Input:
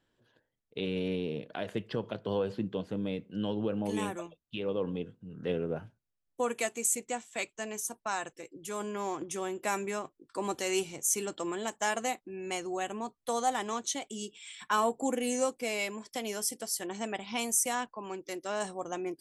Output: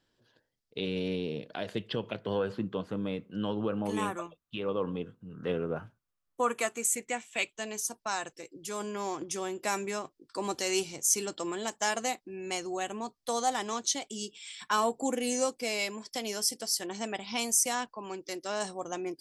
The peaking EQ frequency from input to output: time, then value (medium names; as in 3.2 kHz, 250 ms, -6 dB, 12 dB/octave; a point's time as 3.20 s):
peaking EQ +9.5 dB 0.64 oct
1.66 s 4.9 kHz
2.57 s 1.2 kHz
6.65 s 1.2 kHz
7.86 s 4.9 kHz